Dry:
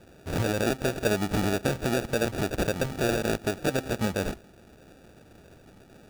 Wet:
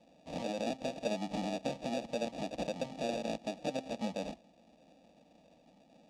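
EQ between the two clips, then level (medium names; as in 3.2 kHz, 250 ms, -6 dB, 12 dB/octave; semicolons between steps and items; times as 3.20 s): high-pass 250 Hz 6 dB/octave; distance through air 110 m; static phaser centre 390 Hz, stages 6; -4.0 dB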